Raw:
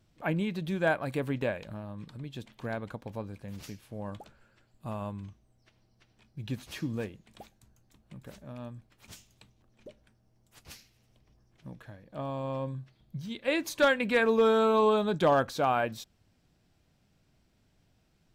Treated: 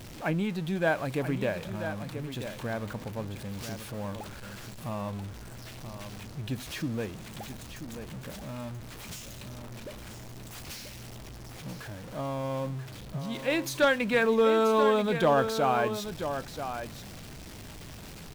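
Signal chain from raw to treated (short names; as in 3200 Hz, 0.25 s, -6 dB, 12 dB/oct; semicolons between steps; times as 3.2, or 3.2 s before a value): zero-crossing step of -39 dBFS; echo 0.984 s -9.5 dB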